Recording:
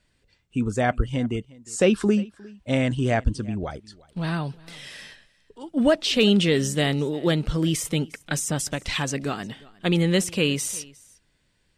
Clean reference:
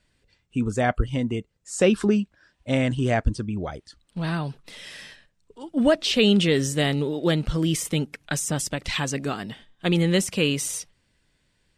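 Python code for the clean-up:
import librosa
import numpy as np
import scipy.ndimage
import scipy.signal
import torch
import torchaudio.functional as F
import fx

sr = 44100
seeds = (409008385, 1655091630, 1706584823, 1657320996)

y = fx.fix_declip(x, sr, threshold_db=-9.0)
y = fx.fix_echo_inverse(y, sr, delay_ms=356, level_db=-23.0)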